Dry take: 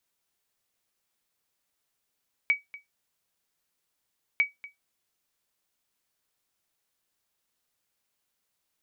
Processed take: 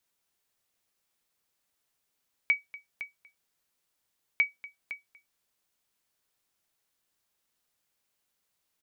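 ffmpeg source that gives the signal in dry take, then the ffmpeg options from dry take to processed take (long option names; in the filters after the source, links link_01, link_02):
-f lavfi -i "aevalsrc='0.188*(sin(2*PI*2270*mod(t,1.9))*exp(-6.91*mod(t,1.9)/0.16)+0.106*sin(2*PI*2270*max(mod(t,1.9)-0.24,0))*exp(-6.91*max(mod(t,1.9)-0.24,0)/0.16))':duration=3.8:sample_rate=44100"
-af "aecho=1:1:509:0.211"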